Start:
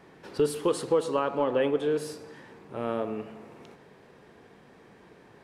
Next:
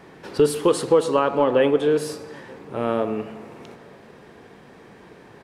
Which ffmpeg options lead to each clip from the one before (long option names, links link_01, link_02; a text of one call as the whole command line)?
ffmpeg -i in.wav -filter_complex "[0:a]asplit=2[link_01][link_02];[link_02]adelay=932.9,volume=-28dB,highshelf=frequency=4000:gain=-21[link_03];[link_01][link_03]amix=inputs=2:normalize=0,volume=7.5dB" out.wav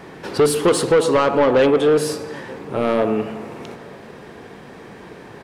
ffmpeg -i in.wav -af "asoftclip=type=tanh:threshold=-17dB,volume=7.5dB" out.wav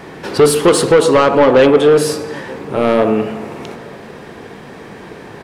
ffmpeg -i in.wav -af "bandreject=frequency=60.59:width_type=h:width=4,bandreject=frequency=121.18:width_type=h:width=4,bandreject=frequency=181.77:width_type=h:width=4,bandreject=frequency=242.36:width_type=h:width=4,bandreject=frequency=302.95:width_type=h:width=4,bandreject=frequency=363.54:width_type=h:width=4,bandreject=frequency=424.13:width_type=h:width=4,bandreject=frequency=484.72:width_type=h:width=4,bandreject=frequency=545.31:width_type=h:width=4,bandreject=frequency=605.9:width_type=h:width=4,bandreject=frequency=666.49:width_type=h:width=4,bandreject=frequency=727.08:width_type=h:width=4,bandreject=frequency=787.67:width_type=h:width=4,bandreject=frequency=848.26:width_type=h:width=4,bandreject=frequency=908.85:width_type=h:width=4,bandreject=frequency=969.44:width_type=h:width=4,bandreject=frequency=1030.03:width_type=h:width=4,bandreject=frequency=1090.62:width_type=h:width=4,bandreject=frequency=1151.21:width_type=h:width=4,bandreject=frequency=1211.8:width_type=h:width=4,bandreject=frequency=1272.39:width_type=h:width=4,bandreject=frequency=1332.98:width_type=h:width=4,bandreject=frequency=1393.57:width_type=h:width=4,bandreject=frequency=1454.16:width_type=h:width=4,bandreject=frequency=1514.75:width_type=h:width=4,bandreject=frequency=1575.34:width_type=h:width=4,bandreject=frequency=1635.93:width_type=h:width=4,volume=6dB" out.wav